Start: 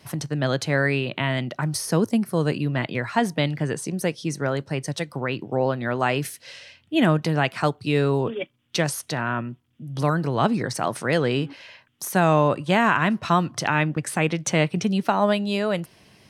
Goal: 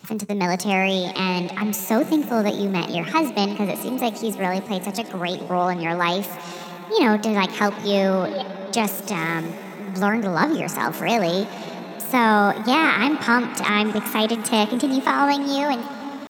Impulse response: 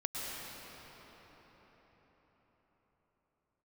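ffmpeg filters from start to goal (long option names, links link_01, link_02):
-filter_complex "[0:a]asplit=2[link_01][link_02];[1:a]atrim=start_sample=2205,asetrate=24696,aresample=44100,adelay=99[link_03];[link_02][link_03]afir=irnorm=-1:irlink=0,volume=-20dB[link_04];[link_01][link_04]amix=inputs=2:normalize=0,asetrate=60591,aresample=44100,atempo=0.727827,volume=1.5dB"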